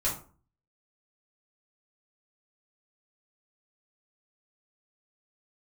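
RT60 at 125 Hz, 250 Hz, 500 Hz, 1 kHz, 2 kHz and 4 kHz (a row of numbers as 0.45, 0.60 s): 0.60, 0.50, 0.40, 0.40, 0.30, 0.25 s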